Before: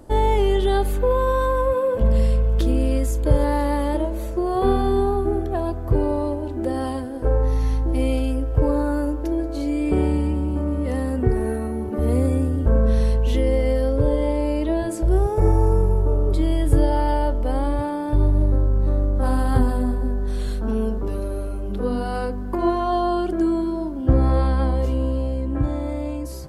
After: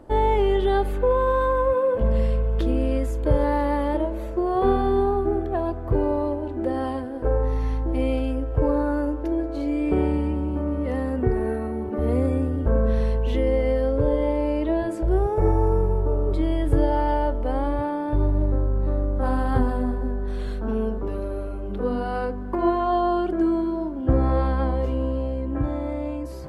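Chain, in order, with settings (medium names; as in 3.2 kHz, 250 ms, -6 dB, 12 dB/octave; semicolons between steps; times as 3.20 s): tone controls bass -4 dB, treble -13 dB; reverse; upward compressor, threshold -32 dBFS; reverse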